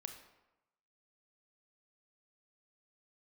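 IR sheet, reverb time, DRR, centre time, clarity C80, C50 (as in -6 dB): 0.95 s, 5.5 dB, 20 ms, 10.0 dB, 8.0 dB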